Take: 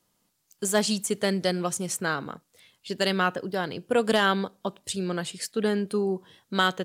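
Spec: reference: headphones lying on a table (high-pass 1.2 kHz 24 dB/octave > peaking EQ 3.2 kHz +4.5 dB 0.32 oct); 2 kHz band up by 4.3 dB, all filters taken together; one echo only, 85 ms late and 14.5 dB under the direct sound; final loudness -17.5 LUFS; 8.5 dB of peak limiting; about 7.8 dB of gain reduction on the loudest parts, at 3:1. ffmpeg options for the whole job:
-af "equalizer=f=2000:t=o:g=6.5,acompressor=threshold=0.0501:ratio=3,alimiter=limit=0.0891:level=0:latency=1,highpass=f=1200:w=0.5412,highpass=f=1200:w=1.3066,equalizer=f=3200:t=o:w=0.32:g=4.5,aecho=1:1:85:0.188,volume=8.41"

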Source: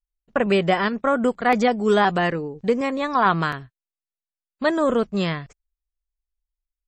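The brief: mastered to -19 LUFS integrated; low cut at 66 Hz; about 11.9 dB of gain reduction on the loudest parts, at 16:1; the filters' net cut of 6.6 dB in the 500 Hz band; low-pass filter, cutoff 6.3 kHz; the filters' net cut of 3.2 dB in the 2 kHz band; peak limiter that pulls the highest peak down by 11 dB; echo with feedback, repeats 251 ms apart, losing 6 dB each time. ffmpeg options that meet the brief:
-af "highpass=66,lowpass=6300,equalizer=f=500:t=o:g=-8,equalizer=f=2000:t=o:g=-3.5,acompressor=threshold=0.0355:ratio=16,alimiter=level_in=1.5:limit=0.0631:level=0:latency=1,volume=0.668,aecho=1:1:251|502|753|1004|1255|1506:0.501|0.251|0.125|0.0626|0.0313|0.0157,volume=7.08"

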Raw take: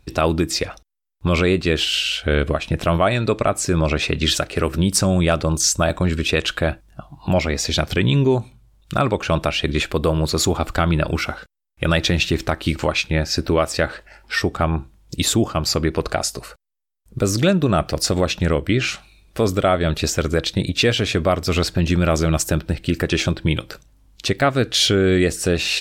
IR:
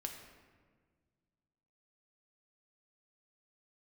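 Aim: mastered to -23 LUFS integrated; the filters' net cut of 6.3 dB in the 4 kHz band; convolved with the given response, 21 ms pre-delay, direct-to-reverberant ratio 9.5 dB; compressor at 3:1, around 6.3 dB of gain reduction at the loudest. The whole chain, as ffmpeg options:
-filter_complex "[0:a]equalizer=f=4000:t=o:g=-8.5,acompressor=threshold=0.0794:ratio=3,asplit=2[s0][s1];[1:a]atrim=start_sample=2205,adelay=21[s2];[s1][s2]afir=irnorm=-1:irlink=0,volume=0.398[s3];[s0][s3]amix=inputs=2:normalize=0,volume=1.33"

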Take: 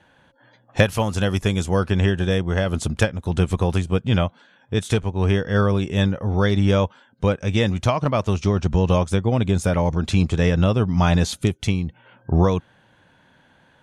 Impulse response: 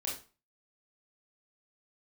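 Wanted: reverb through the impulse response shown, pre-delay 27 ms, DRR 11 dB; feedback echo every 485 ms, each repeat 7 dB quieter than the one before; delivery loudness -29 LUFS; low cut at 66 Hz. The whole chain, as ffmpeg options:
-filter_complex "[0:a]highpass=66,aecho=1:1:485|970|1455|1940|2425:0.447|0.201|0.0905|0.0407|0.0183,asplit=2[s0][s1];[1:a]atrim=start_sample=2205,adelay=27[s2];[s1][s2]afir=irnorm=-1:irlink=0,volume=0.224[s3];[s0][s3]amix=inputs=2:normalize=0,volume=0.376"

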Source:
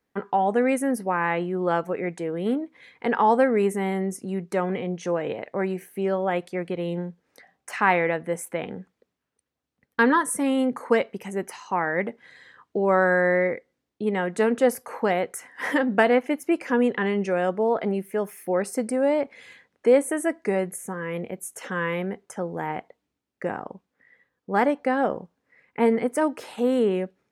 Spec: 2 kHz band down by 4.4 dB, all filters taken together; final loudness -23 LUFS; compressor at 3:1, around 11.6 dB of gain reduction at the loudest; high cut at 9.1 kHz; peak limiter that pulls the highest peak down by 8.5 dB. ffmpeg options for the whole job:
-af "lowpass=9100,equalizer=f=2000:t=o:g=-5.5,acompressor=threshold=0.0316:ratio=3,volume=3.98,alimiter=limit=0.251:level=0:latency=1"

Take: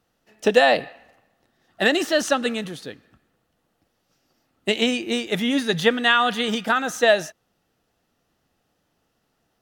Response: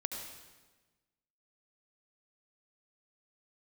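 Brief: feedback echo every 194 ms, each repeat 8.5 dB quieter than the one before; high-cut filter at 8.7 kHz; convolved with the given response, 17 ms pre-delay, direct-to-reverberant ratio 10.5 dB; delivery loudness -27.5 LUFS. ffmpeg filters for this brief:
-filter_complex "[0:a]lowpass=8700,aecho=1:1:194|388|582|776:0.376|0.143|0.0543|0.0206,asplit=2[s0][s1];[1:a]atrim=start_sample=2205,adelay=17[s2];[s1][s2]afir=irnorm=-1:irlink=0,volume=0.266[s3];[s0][s3]amix=inputs=2:normalize=0,volume=0.422"

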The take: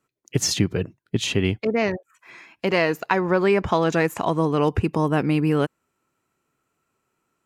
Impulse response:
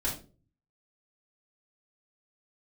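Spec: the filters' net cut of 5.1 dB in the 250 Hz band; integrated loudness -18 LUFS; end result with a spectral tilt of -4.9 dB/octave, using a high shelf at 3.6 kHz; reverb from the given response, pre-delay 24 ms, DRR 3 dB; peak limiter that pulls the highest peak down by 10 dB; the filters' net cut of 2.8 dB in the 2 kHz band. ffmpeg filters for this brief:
-filter_complex "[0:a]equalizer=f=250:t=o:g=-8,equalizer=f=2000:t=o:g=-5.5,highshelf=f=3600:g=7,alimiter=limit=0.141:level=0:latency=1,asplit=2[s0][s1];[1:a]atrim=start_sample=2205,adelay=24[s2];[s1][s2]afir=irnorm=-1:irlink=0,volume=0.376[s3];[s0][s3]amix=inputs=2:normalize=0,volume=2.37"

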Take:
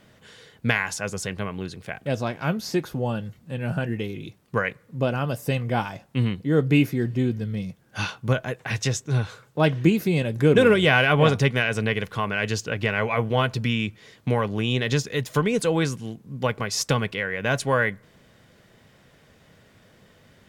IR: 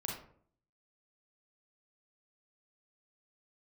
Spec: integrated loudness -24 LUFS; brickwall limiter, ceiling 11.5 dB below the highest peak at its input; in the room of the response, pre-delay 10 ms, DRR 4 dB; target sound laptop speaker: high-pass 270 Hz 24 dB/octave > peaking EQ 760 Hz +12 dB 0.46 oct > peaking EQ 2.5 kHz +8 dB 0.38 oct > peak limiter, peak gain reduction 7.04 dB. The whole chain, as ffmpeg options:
-filter_complex "[0:a]alimiter=limit=0.15:level=0:latency=1,asplit=2[s0][s1];[1:a]atrim=start_sample=2205,adelay=10[s2];[s1][s2]afir=irnorm=-1:irlink=0,volume=0.562[s3];[s0][s3]amix=inputs=2:normalize=0,highpass=f=270:w=0.5412,highpass=f=270:w=1.3066,equalizer=f=760:t=o:w=0.46:g=12,equalizer=f=2500:t=o:w=0.38:g=8,volume=1.5,alimiter=limit=0.237:level=0:latency=1"

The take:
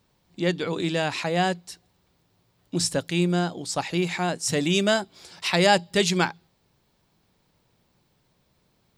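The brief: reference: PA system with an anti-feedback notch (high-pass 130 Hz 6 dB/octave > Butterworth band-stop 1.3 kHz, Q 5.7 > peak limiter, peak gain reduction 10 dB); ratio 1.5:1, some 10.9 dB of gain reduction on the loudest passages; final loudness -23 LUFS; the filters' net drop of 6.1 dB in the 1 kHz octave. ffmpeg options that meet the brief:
-af "equalizer=f=1000:t=o:g=-8.5,acompressor=threshold=0.00355:ratio=1.5,highpass=f=130:p=1,asuperstop=centerf=1300:order=8:qfactor=5.7,volume=6.31,alimiter=limit=0.237:level=0:latency=1"

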